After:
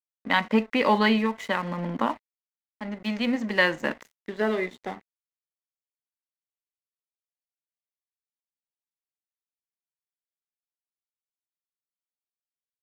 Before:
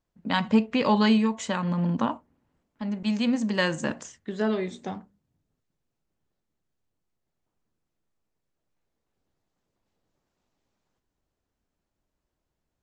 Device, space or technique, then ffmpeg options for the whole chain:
pocket radio on a weak battery: -af "highpass=270,lowpass=3800,aeval=exprs='sgn(val(0))*max(abs(val(0))-0.00447,0)':c=same,equalizer=f=2000:t=o:w=0.24:g=9,volume=1.41"

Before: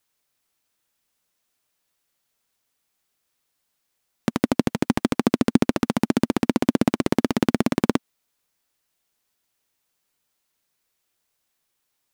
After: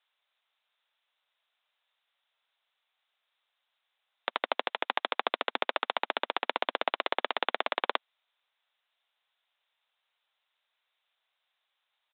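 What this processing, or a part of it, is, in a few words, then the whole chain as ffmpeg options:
musical greeting card: -af "aresample=8000,aresample=44100,highpass=f=620:w=0.5412,highpass=f=620:w=1.3066,equalizer=f=3800:t=o:w=0.49:g=7"

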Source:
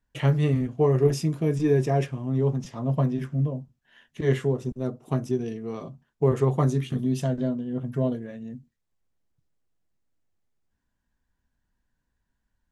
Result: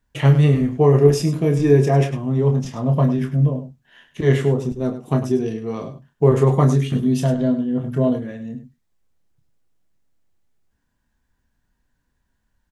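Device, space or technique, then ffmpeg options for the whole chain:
slapback doubling: -filter_complex "[0:a]asplit=3[s0][s1][s2];[s1]adelay=28,volume=0.422[s3];[s2]adelay=102,volume=0.266[s4];[s0][s3][s4]amix=inputs=3:normalize=0,volume=2"

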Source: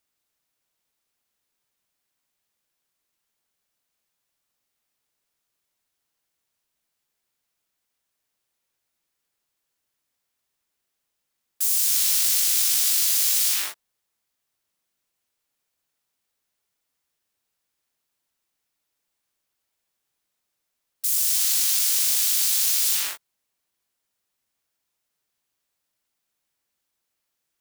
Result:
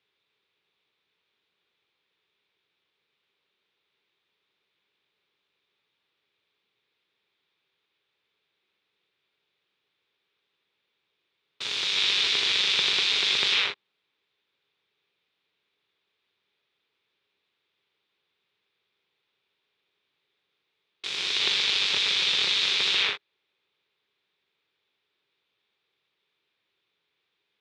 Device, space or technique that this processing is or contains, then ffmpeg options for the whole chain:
ring modulator pedal into a guitar cabinet: -af "aeval=exprs='val(0)*sgn(sin(2*PI*180*n/s))':c=same,highpass=110,equalizer=f=250:t=q:w=4:g=-5,equalizer=f=410:t=q:w=4:g=9,equalizer=f=680:t=q:w=4:g=-6,equalizer=f=2400:t=q:w=4:g=6,equalizer=f=3600:t=q:w=4:g=9,lowpass=f=3900:w=0.5412,lowpass=f=3900:w=1.3066,volume=1.68"

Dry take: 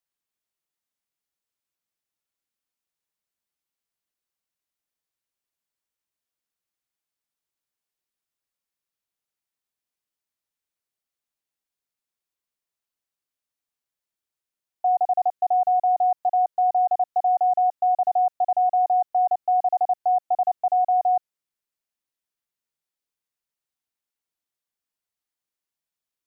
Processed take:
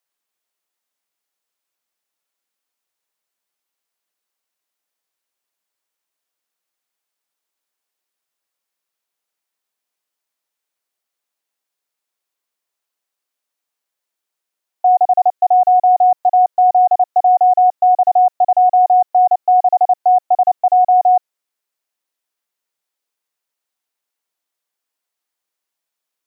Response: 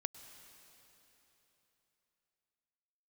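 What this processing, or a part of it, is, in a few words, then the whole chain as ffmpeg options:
filter by subtraction: -filter_complex "[0:a]asplit=2[s0][s1];[s1]lowpass=630,volume=-1[s2];[s0][s2]amix=inputs=2:normalize=0,volume=2.24"

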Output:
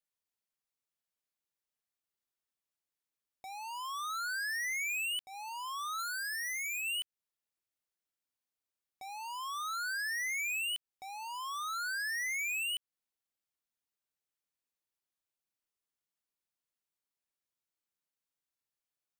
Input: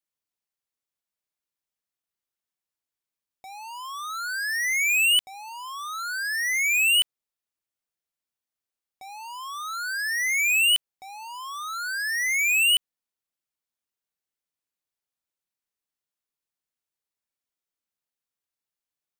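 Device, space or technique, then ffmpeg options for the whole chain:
serial compression, leveller first: -filter_complex "[0:a]asplit=3[s0][s1][s2];[s0]afade=t=out:st=5.98:d=0.02[s3];[s1]highshelf=f=6700:g=7.5,afade=t=in:st=5.98:d=0.02,afade=t=out:st=6.8:d=0.02[s4];[s2]afade=t=in:st=6.8:d=0.02[s5];[s3][s4][s5]amix=inputs=3:normalize=0,acompressor=threshold=0.0562:ratio=2.5,acompressor=threshold=0.0224:ratio=5,volume=0.668"

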